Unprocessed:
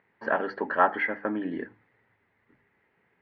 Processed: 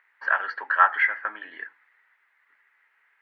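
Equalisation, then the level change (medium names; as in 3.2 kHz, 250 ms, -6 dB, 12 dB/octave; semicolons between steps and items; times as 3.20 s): resonant high-pass 1.4 kHz, resonance Q 1.7; +3.0 dB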